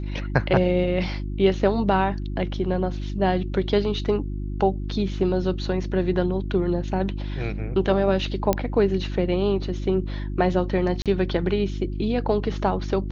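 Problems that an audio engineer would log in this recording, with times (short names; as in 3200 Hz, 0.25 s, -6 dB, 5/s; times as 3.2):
hum 50 Hz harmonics 7 -29 dBFS
8.53 pop -7 dBFS
11.02–11.06 gap 37 ms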